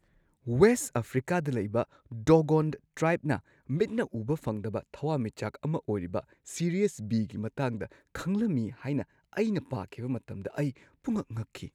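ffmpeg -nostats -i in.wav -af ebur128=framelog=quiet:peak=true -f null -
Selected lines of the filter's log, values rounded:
Integrated loudness:
  I:         -30.6 LUFS
  Threshold: -40.7 LUFS
Loudness range:
  LRA:         5.7 LU
  Threshold: -51.0 LUFS
  LRA low:   -33.2 LUFS
  LRA high:  -27.5 LUFS
True peak:
  Peak:       -9.3 dBFS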